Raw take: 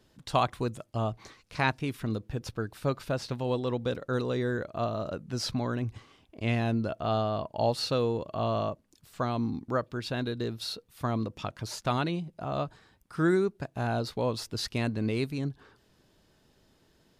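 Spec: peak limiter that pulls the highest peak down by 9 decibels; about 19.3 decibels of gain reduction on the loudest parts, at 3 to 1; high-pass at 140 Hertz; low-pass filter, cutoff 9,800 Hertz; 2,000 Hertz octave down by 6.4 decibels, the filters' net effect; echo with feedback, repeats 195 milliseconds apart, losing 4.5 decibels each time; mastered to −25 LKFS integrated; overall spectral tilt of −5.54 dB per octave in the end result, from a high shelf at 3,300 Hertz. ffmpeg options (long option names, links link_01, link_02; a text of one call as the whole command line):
ffmpeg -i in.wav -af "highpass=140,lowpass=9800,equalizer=frequency=2000:width_type=o:gain=-6.5,highshelf=frequency=3300:gain=-8,acompressor=threshold=-49dB:ratio=3,alimiter=level_in=13.5dB:limit=-24dB:level=0:latency=1,volume=-13.5dB,aecho=1:1:195|390|585|780|975|1170|1365|1560|1755:0.596|0.357|0.214|0.129|0.0772|0.0463|0.0278|0.0167|0.01,volume=23.5dB" out.wav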